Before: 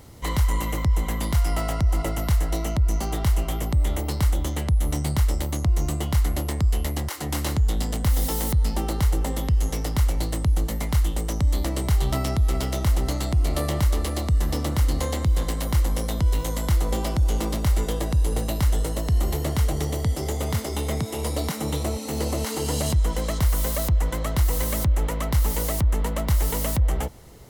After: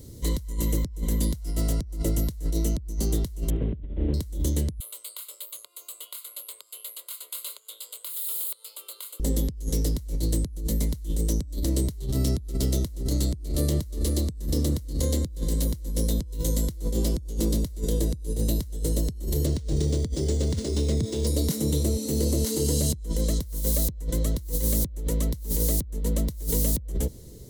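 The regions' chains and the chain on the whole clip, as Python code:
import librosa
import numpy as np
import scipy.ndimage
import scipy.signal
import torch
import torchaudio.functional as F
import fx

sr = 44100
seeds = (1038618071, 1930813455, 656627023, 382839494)

y = fx.chain(x, sr, fx.delta_mod(bps=16000, step_db=-39.5),
    fx.room_flutter(wall_m=11.0, rt60_s=0.54), at=(3.5, 4.14))
y = fx.chain(y, sr, fx.highpass(hz=870.0, slope=24),
    fx.fixed_phaser(hz=1200.0, stages=8), at=(4.8, 9.2))
y = fx.chain(y, sr, fx.high_shelf(hz=11000.0, db=3.5),
    fx.resample_linear(factor=3), at=(19.46, 21.27))
y = fx.band_shelf(y, sr, hz=1400.0, db=-14.0, octaves=2.5)
y = fx.over_compress(y, sr, threshold_db=-25.0, ratio=-0.5)
y = fx.graphic_eq_31(y, sr, hz=(800, 1250, 5000), db=(-7, -6, -3))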